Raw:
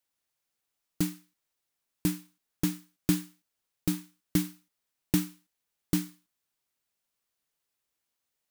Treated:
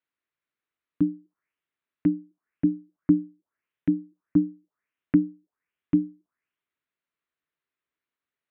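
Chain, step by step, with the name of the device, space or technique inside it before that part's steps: envelope filter bass rig (touch-sensitive low-pass 280–4200 Hz down, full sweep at -34 dBFS; cabinet simulation 80–2200 Hz, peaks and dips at 110 Hz -8 dB, 200 Hz -5 dB, 530 Hz -5 dB, 800 Hz -9 dB)

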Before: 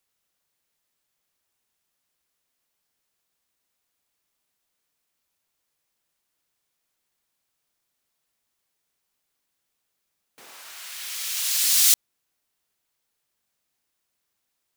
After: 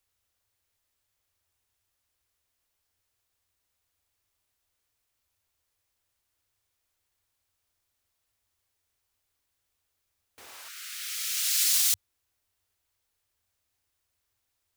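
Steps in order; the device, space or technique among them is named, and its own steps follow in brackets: 10.68–11.73 s: Chebyshev high-pass 1.2 kHz, order 8; car stereo with a boomy subwoofer (resonant low shelf 120 Hz +8 dB, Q 3; peak limiter -12 dBFS, peak gain reduction 7.5 dB); trim -1.5 dB

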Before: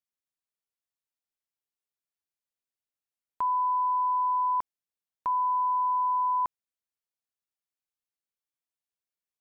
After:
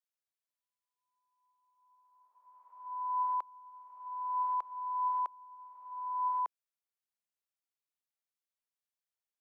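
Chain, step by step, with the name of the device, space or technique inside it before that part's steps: ghost voice (reverse; reverberation RT60 2.3 s, pre-delay 65 ms, DRR 3 dB; reverse; high-pass 460 Hz 24 dB/octave); trim -5.5 dB

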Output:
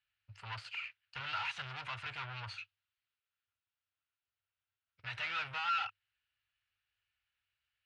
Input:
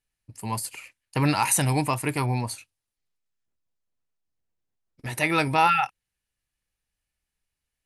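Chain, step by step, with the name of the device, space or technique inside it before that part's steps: scooped metal amplifier (valve stage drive 36 dB, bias 0.25; cabinet simulation 96–3700 Hz, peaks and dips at 100 Hz +9 dB, 150 Hz -6 dB, 220 Hz -9 dB, 1.4 kHz +9 dB, 2.8 kHz +4 dB; amplifier tone stack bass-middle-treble 10-0-10); trim +4.5 dB

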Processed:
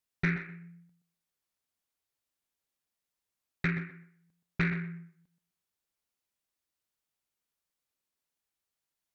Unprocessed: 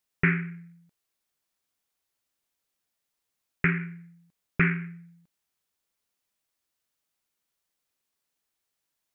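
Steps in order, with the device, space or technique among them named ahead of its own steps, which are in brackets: bass shelf 130 Hz +4.5 dB; rockabilly slapback (valve stage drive 13 dB, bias 0.35; tape echo 125 ms, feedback 25%, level -8.5 dB, low-pass 2 kHz); trim -5 dB

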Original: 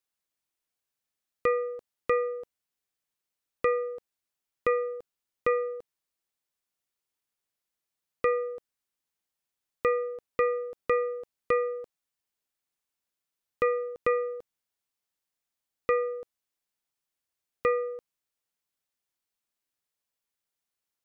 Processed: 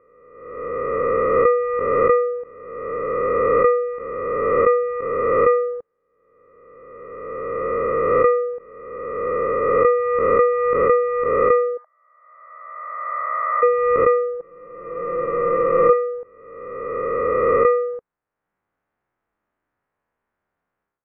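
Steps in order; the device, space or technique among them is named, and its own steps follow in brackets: reverse spectral sustain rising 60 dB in 2.30 s; 11.77–13.63 s: Chebyshev band-pass 620–2200 Hz, order 5; 14.39–15.93 s: comb 5.9 ms, depth 83%; harmonic-percussive split harmonic +6 dB; action camera in a waterproof case (low-pass 1.7 kHz 24 dB/octave; level rider gain up to 14 dB; trim -3 dB; AAC 64 kbps 32 kHz)

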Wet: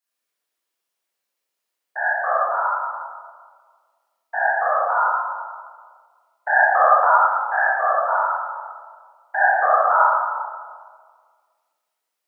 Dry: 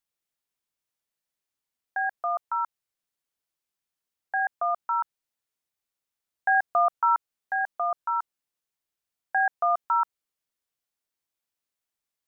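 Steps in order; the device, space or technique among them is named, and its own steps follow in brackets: whispering ghost (whisper effect; high-pass 350 Hz 12 dB/octave; reverberation RT60 1.7 s, pre-delay 20 ms, DRR -8.5 dB)

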